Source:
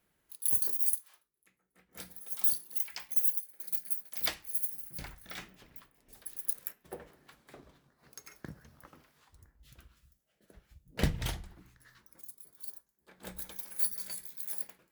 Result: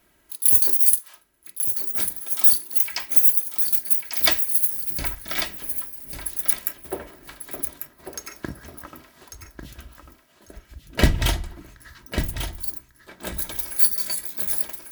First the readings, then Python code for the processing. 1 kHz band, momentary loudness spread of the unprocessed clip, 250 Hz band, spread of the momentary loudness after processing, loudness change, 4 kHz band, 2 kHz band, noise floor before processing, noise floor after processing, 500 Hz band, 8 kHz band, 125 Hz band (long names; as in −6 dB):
+14.0 dB, 22 LU, +12.0 dB, 21 LU, +12.0 dB, +14.5 dB, +14.5 dB, −78 dBFS, −59 dBFS, +13.5 dB, +13.5 dB, +11.5 dB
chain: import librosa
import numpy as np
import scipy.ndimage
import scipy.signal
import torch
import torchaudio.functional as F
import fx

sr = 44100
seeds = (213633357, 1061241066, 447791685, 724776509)

p1 = x + 0.46 * np.pad(x, (int(3.1 * sr / 1000.0), 0))[:len(x)]
p2 = 10.0 ** (-23.5 / 20.0) * np.tanh(p1 / 10.0 ** (-23.5 / 20.0))
p3 = p1 + (p2 * 10.0 ** (-3.0 / 20.0))
p4 = fx.echo_feedback(p3, sr, ms=1145, feedback_pct=17, wet_db=-8)
y = p4 * 10.0 ** (8.5 / 20.0)